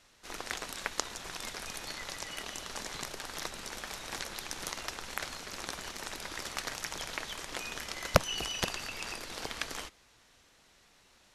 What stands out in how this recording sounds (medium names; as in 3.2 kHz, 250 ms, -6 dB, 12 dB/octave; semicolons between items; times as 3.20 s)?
noise floor -64 dBFS; spectral tilt -3.0 dB/octave